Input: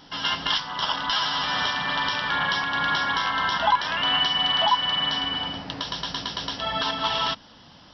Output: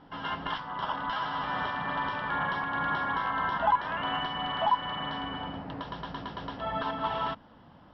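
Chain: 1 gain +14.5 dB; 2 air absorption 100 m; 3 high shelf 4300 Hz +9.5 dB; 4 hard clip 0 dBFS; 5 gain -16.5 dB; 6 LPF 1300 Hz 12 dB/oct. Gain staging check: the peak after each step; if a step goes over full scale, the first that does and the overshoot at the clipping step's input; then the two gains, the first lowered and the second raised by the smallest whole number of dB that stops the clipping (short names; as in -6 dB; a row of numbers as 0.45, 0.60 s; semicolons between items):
+4.5, +3.5, +5.0, 0.0, -16.5, -16.0 dBFS; step 1, 5.0 dB; step 1 +9.5 dB, step 5 -11.5 dB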